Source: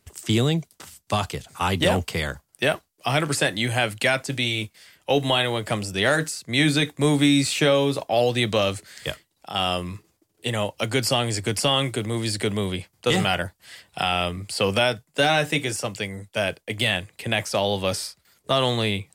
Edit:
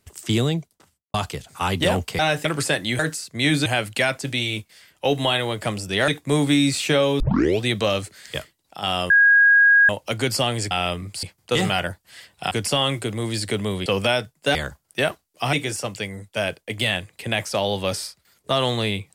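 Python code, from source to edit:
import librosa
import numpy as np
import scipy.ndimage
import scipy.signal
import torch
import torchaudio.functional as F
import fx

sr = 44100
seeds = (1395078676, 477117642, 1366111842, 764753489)

y = fx.studio_fade_out(x, sr, start_s=0.39, length_s=0.75)
y = fx.edit(y, sr, fx.swap(start_s=2.19, length_s=0.98, other_s=15.27, other_length_s=0.26),
    fx.move(start_s=6.13, length_s=0.67, to_s=3.71),
    fx.tape_start(start_s=7.92, length_s=0.42),
    fx.bleep(start_s=9.82, length_s=0.79, hz=1640.0, db=-10.5),
    fx.swap(start_s=11.43, length_s=1.35, other_s=14.06, other_length_s=0.52), tone=tone)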